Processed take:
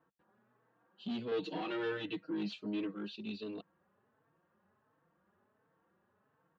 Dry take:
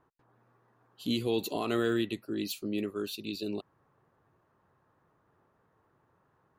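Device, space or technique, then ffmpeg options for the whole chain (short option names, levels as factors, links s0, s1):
barber-pole flanger into a guitar amplifier: -filter_complex "[0:a]asplit=2[s0][s1];[s1]adelay=4,afreqshift=1.4[s2];[s0][s2]amix=inputs=2:normalize=1,asoftclip=type=tanh:threshold=0.0211,highpass=87,equalizer=f=120:t=q:w=4:g=-6,equalizer=f=200:t=q:w=4:g=9,equalizer=f=530:t=q:w=4:g=4,equalizer=f=1600:t=q:w=4:g=5,equalizer=f=2900:t=q:w=4:g=4,lowpass=f=4200:w=0.5412,lowpass=f=4200:w=1.3066,asettb=1/sr,asplit=3[s3][s4][s5];[s3]atrim=end=1.314[s6];[s4]atrim=start=1.31:end=2.95,asetpts=PTS-STARTPTS,afade=t=in:d=0.004:c=qsin,afade=t=out:st=1.636:d=0.004:c=qsin,aecho=1:1:6.4:0.98,atrim=end_sample=72324[s7];[s5]atrim=start=2.946[s8];[s6][s7]acrossfade=d=0.004:c1=hsin:c2=qsin[s9];[s9][s8]acrossfade=d=0.004:c1=qsin:c2=hsin,volume=0.668"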